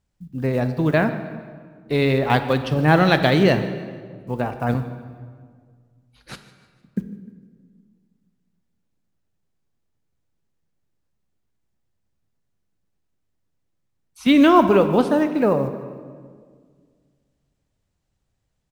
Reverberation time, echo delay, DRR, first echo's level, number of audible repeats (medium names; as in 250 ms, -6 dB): 1.8 s, 152 ms, 9.0 dB, -19.0 dB, 3